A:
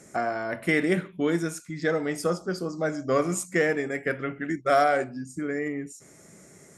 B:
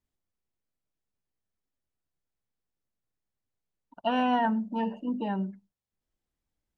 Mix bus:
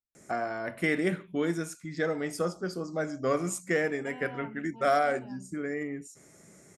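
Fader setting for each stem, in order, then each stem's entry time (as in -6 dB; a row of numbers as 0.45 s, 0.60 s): -4.0 dB, -19.0 dB; 0.15 s, 0.00 s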